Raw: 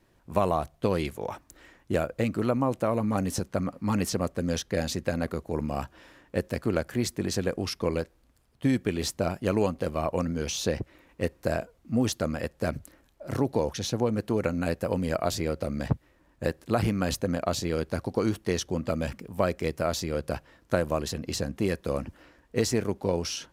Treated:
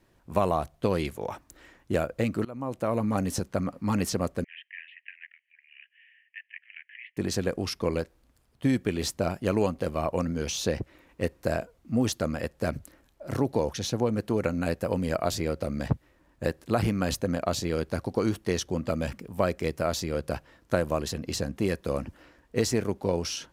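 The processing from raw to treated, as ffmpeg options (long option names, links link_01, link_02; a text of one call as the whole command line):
ffmpeg -i in.wav -filter_complex "[0:a]asettb=1/sr,asplit=3[link_01][link_02][link_03];[link_01]atrim=end=4.444[link_04];[link_02]atrim=start=4.44:end=7.17,asetpts=PTS-STARTPTS,afade=type=in:duration=0.004:curve=qsin,afade=type=out:start_time=2.726:duration=0.004:curve=qsin,asuperpass=centerf=2300:order=12:qfactor=1.8[link_05];[link_03]atrim=start=7.166[link_06];[link_04][link_05]acrossfade=duration=0.004:curve1=hsin:curve2=qsin[link_07];[link_07][link_06]acrossfade=duration=0.004:curve1=qsin:curve2=hsin,asplit=2[link_08][link_09];[link_08]atrim=end=2.45,asetpts=PTS-STARTPTS,afade=type=out:start_time=2.446:duration=0.004:curve=hsin:silence=0.0668344[link_10];[link_09]atrim=start=2.45,asetpts=PTS-STARTPTS,afade=type=in:duration=0.51:silence=0.0668344[link_11];[link_10][link_11]concat=n=2:v=0:a=1" out.wav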